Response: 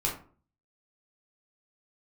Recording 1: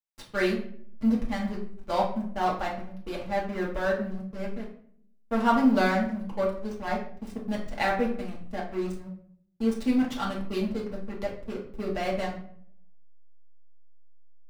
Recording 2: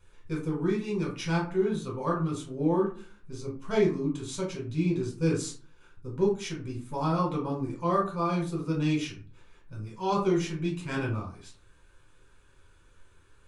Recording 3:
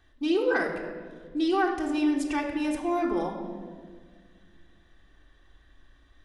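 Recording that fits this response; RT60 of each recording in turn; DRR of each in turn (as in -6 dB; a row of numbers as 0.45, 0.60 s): 2; 0.60, 0.45, 1.7 s; -4.5, -3.0, -1.5 dB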